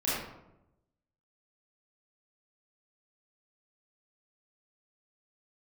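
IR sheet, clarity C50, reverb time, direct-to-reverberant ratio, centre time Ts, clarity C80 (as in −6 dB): −2.0 dB, 0.90 s, −10.0 dB, 76 ms, 2.0 dB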